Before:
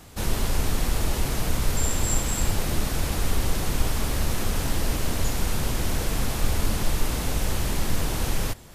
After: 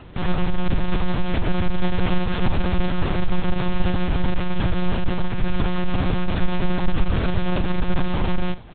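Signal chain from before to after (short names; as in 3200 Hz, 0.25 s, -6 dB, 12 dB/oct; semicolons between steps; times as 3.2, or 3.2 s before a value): half-waves squared off; notch 2000 Hz, Q 22; doubler 37 ms -12.5 dB; monotone LPC vocoder at 8 kHz 180 Hz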